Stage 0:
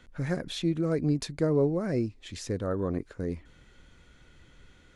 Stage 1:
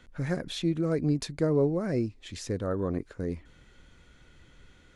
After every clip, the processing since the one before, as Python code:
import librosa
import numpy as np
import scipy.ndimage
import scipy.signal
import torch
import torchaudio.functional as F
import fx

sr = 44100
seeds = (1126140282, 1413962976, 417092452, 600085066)

y = x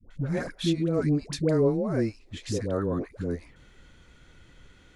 y = fx.dispersion(x, sr, late='highs', ms=108.0, hz=630.0)
y = F.gain(torch.from_numpy(y), 2.0).numpy()